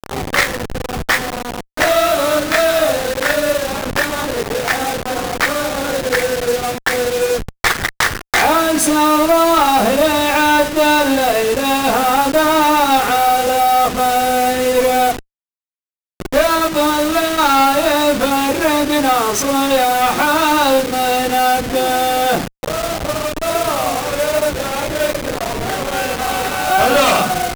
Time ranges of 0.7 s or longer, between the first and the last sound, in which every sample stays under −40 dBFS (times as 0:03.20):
0:15.21–0:16.20